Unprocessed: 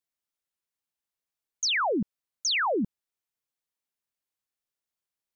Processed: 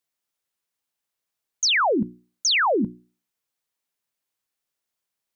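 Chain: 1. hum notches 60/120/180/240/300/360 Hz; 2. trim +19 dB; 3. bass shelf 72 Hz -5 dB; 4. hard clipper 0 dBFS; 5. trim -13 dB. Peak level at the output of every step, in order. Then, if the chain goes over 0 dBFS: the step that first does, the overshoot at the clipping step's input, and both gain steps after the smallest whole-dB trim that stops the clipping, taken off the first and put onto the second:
-20.5 dBFS, -1.5 dBFS, -2.0 dBFS, -2.0 dBFS, -15.0 dBFS; nothing clips

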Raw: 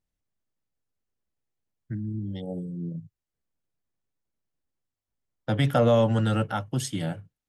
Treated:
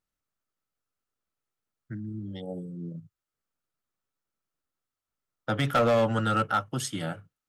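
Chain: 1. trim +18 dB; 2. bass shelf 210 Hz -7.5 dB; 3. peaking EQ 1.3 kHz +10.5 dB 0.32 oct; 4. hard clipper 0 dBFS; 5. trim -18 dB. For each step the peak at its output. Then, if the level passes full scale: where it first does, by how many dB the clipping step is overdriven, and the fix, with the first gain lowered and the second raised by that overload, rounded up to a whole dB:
+7.5 dBFS, +7.0 dBFS, +9.0 dBFS, 0.0 dBFS, -18.0 dBFS; step 1, 9.0 dB; step 1 +9 dB, step 5 -9 dB

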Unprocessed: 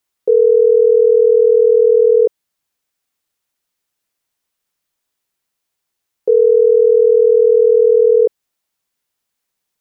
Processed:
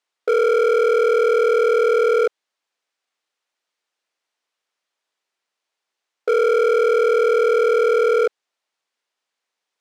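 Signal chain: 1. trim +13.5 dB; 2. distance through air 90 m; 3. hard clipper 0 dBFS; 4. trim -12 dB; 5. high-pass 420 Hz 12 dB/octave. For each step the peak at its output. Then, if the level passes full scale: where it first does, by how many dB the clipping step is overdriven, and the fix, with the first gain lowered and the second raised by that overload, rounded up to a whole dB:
+9.5 dBFS, +9.5 dBFS, 0.0 dBFS, -12.0 dBFS, -8.5 dBFS; step 1, 9.5 dB; step 1 +3.5 dB, step 4 -2 dB

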